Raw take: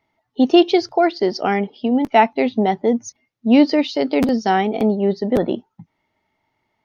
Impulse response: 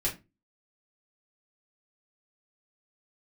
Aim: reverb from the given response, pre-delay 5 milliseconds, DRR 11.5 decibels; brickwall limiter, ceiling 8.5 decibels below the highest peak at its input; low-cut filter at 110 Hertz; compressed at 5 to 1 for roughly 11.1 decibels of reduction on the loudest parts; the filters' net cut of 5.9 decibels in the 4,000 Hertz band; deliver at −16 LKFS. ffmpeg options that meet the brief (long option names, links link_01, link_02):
-filter_complex "[0:a]highpass=110,equalizer=frequency=4000:width_type=o:gain=-9,acompressor=threshold=-20dB:ratio=5,alimiter=limit=-17dB:level=0:latency=1,asplit=2[link_01][link_02];[1:a]atrim=start_sample=2205,adelay=5[link_03];[link_02][link_03]afir=irnorm=-1:irlink=0,volume=-17.5dB[link_04];[link_01][link_04]amix=inputs=2:normalize=0,volume=11dB"